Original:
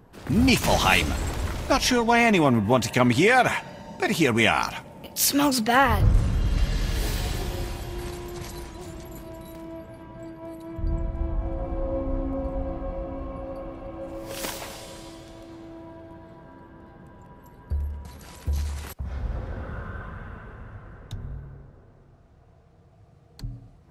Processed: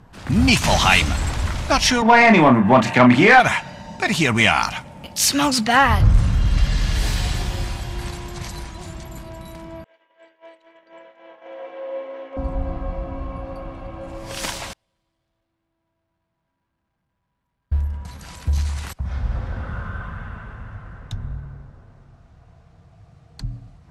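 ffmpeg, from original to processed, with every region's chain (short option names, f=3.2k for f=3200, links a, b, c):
-filter_complex "[0:a]asettb=1/sr,asplit=3[a][b][c];[a]atrim=end=2.024[d];[b]atrim=start=2.02:end=3.4,asetpts=PTS-STARTPTS,afade=t=in:d=0.004:c=qsin,afade=t=out:st=1.376:d=0.004:c=qsin,acrossover=split=150 2400:gain=0.0794 1 0.141[e][f][g];[e][f][g]amix=inputs=3:normalize=0,acontrast=54,asplit=2[h][i];[i]adelay=32,volume=-5.5dB[j];[h][j]amix=inputs=2:normalize=0,atrim=end_sample=60858[k];[c]atrim=start=3.396[l];[d][k]acrossfade=d=0.004:c1=hsin:c2=qsin[m];[m][l]acrossfade=d=0.004:c1=qsin:c2=hsin,asettb=1/sr,asplit=3[n][o][p];[n]atrim=end=9.844[q];[o]atrim=start=9.84:end=12.37,asetpts=PTS-STARTPTS,afade=t=in:d=0.004:c=qsin,afade=t=out:st=2.526:d=0.004:c=qsin,highpass=f=460:w=0.5412,highpass=f=460:w=1.3066,equalizer=f=470:t=q:w=4:g=6,equalizer=f=780:t=q:w=4:g=-7,equalizer=f=1.2k:t=q:w=4:g=-8,equalizer=f=1.9k:t=q:w=4:g=5,equalizer=f=3k:t=q:w=4:g=7,equalizer=f=4.7k:t=q:w=4:g=-8,lowpass=f=6k:w=0.5412,lowpass=f=6k:w=1.3066,agate=range=-33dB:threshold=-39dB:ratio=3:release=100:detection=peak[r];[p]atrim=start=12.366[s];[q][r]acrossfade=d=0.004:c1=hsin:c2=qsin[t];[t][s]acrossfade=d=0.004:c1=qsin:c2=hsin,asettb=1/sr,asplit=3[u][v][w];[u]atrim=end=14.734[x];[v]atrim=start=14.73:end=17.8,asetpts=PTS-STARTPTS,afade=t=in:d=0.004:c=qsin,afade=t=out:st=3.066:d=0.004:c=qsin,aeval=exprs='val(0)+0.5*0.0112*sgn(val(0))':c=same,agate=range=-40dB:threshold=-29dB:ratio=16:release=100:detection=peak,equalizer=f=6.9k:w=1:g=-7.5[y];[w]atrim=start=17.796[z];[x][y]acrossfade=d=0.004:c1=hsin:c2=qsin[aa];[aa][z]acrossfade=d=0.004:c1=qsin:c2=hsin,lowpass=9.1k,equalizer=f=400:t=o:w=1.2:g=-9,acontrast=70"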